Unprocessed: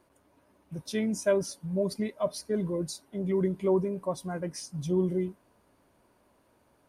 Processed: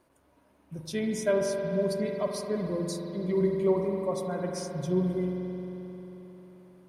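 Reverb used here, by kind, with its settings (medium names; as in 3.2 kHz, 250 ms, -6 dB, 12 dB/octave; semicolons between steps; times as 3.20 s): spring tank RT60 3.9 s, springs 44 ms, chirp 35 ms, DRR 1 dB; trim -1 dB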